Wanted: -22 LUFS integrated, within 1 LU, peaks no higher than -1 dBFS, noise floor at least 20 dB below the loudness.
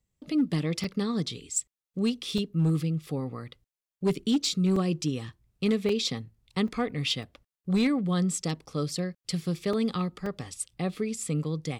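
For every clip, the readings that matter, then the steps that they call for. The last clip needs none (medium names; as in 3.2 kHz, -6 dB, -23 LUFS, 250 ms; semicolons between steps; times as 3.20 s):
clipped samples 0.4%; clipping level -18.5 dBFS; dropouts 8; longest dropout 3.5 ms; loudness -29.5 LUFS; peak level -18.5 dBFS; loudness target -22.0 LUFS
-> clip repair -18.5 dBFS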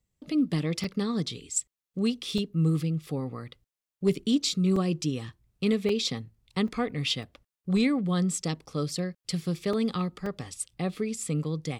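clipped samples 0.0%; dropouts 8; longest dropout 3.5 ms
-> interpolate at 0.84/2.38/4.76/5.89/6.68/7.23/9.73/10.26 s, 3.5 ms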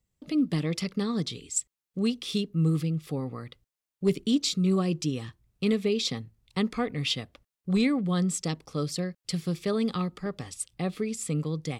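dropouts 0; loudness -29.0 LUFS; peak level -13.0 dBFS; loudness target -22.0 LUFS
-> trim +7 dB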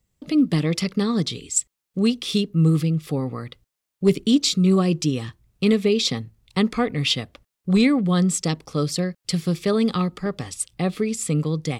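loudness -22.0 LUFS; peak level -6.0 dBFS; noise floor -83 dBFS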